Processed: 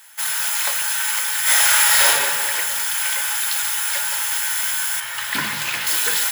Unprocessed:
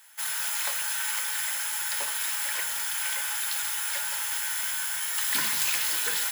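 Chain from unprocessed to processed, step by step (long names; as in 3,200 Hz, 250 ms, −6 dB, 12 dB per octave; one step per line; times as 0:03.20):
0:01.42–0:02.07: thrown reverb, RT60 1.8 s, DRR −10.5 dB
0:05.00–0:05.87: bass and treble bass +6 dB, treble −10 dB
level +8 dB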